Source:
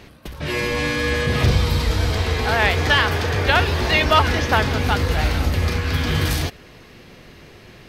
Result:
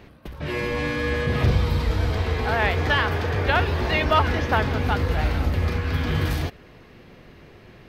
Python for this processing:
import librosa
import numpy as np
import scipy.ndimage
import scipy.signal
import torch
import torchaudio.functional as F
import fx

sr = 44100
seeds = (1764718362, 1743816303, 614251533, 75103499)

y = fx.peak_eq(x, sr, hz=8200.0, db=-10.5, octaves=2.4)
y = y * 10.0 ** (-2.5 / 20.0)